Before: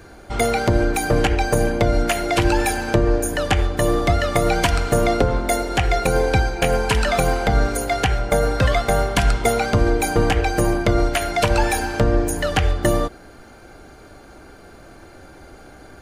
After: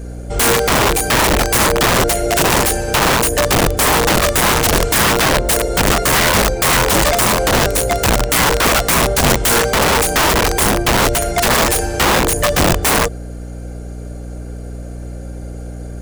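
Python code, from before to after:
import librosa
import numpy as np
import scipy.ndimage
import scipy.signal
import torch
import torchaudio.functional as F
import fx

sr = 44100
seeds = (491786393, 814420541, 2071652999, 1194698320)

y = fx.graphic_eq(x, sr, hz=(125, 250, 500, 1000, 2000, 4000, 8000), db=(5, -12, 11, -11, -4, -7, 8))
y = (np.mod(10.0 ** (13.5 / 20.0) * y + 1.0, 2.0) - 1.0) / 10.0 ** (13.5 / 20.0)
y = fx.add_hum(y, sr, base_hz=60, snr_db=13)
y = y * 10.0 ** (5.5 / 20.0)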